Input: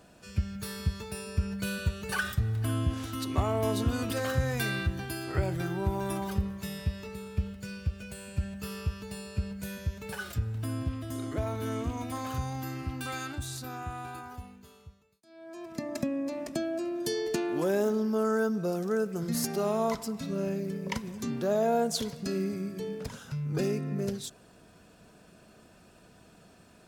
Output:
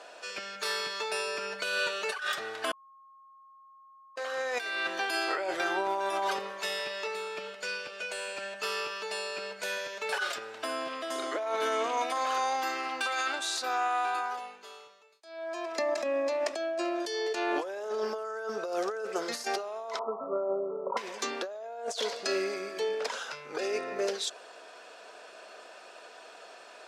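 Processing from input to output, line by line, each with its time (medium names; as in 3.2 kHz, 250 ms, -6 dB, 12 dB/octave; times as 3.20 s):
2.73–4.16 s: bleep 1.08 kHz -9 dBFS
19.99–20.97 s: brick-wall FIR low-pass 1.4 kHz
whole clip: high-pass 490 Hz 24 dB/octave; compressor with a negative ratio -40 dBFS, ratio -1; low-pass 5.7 kHz 12 dB/octave; trim +1.5 dB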